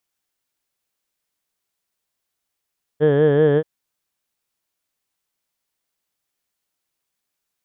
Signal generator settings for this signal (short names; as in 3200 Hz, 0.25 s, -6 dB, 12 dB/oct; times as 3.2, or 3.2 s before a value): formant vowel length 0.63 s, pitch 146 Hz, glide +0.5 st, F1 470 Hz, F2 1700 Hz, F3 3200 Hz